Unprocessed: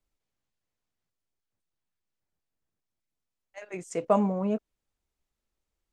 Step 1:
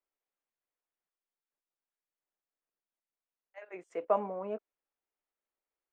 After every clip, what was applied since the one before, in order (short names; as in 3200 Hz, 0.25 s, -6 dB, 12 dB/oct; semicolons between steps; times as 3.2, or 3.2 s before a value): three-band isolator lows -23 dB, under 320 Hz, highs -23 dB, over 2800 Hz; gain -4 dB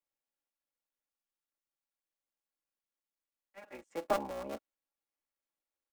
cycle switcher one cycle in 3, muted; comb 3.6 ms, depth 54%; gain -2.5 dB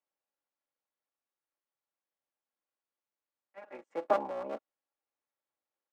band-pass 730 Hz, Q 0.6; gain +4 dB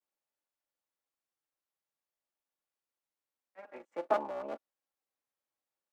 vibrato 0.53 Hz 74 cents; gain -1.5 dB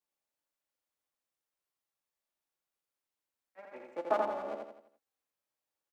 feedback echo 84 ms, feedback 43%, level -3.5 dB; gain -1 dB